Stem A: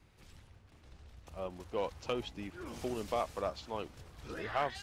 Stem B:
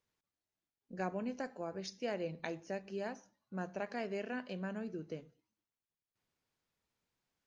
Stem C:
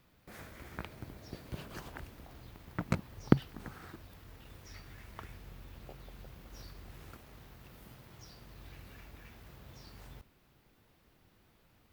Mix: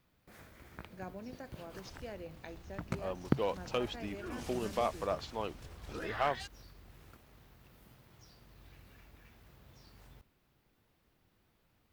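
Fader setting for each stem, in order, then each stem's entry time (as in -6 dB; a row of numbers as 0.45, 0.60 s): +1.5, -7.5, -6.0 dB; 1.65, 0.00, 0.00 s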